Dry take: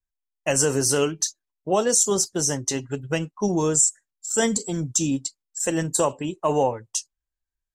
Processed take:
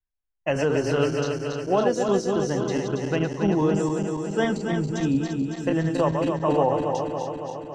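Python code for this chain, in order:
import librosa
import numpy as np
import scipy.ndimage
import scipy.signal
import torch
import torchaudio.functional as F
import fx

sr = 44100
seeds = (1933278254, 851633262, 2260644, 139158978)

y = fx.reverse_delay_fb(x, sr, ms=139, feedback_pct=81, wet_db=-4.5)
y = fx.air_absorb(y, sr, metres=290.0)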